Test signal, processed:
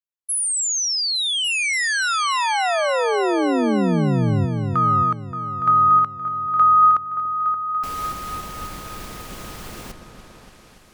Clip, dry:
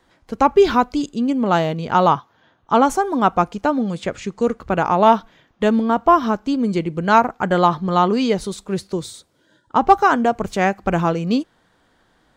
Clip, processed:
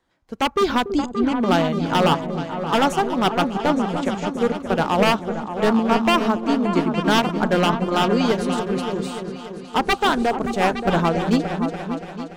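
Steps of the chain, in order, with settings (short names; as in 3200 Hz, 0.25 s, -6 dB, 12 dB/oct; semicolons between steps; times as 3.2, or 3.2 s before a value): wavefolder -10.5 dBFS; repeats that get brighter 0.288 s, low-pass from 400 Hz, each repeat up 2 oct, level -3 dB; upward expander 1.5:1, over -36 dBFS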